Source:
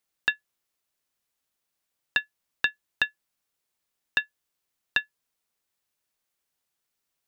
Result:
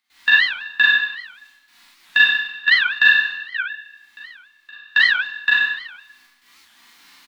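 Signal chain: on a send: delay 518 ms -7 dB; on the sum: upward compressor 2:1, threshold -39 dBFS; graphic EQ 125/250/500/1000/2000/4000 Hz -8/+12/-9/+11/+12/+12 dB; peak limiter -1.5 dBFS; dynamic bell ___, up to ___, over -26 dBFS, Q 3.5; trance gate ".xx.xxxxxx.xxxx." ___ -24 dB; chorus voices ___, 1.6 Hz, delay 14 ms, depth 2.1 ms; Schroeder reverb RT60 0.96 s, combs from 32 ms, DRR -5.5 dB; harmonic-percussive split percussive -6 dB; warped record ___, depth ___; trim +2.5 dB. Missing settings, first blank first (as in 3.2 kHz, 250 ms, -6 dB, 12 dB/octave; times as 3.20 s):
1.6 kHz, +3 dB, 152 bpm, 4, 78 rpm, 250 cents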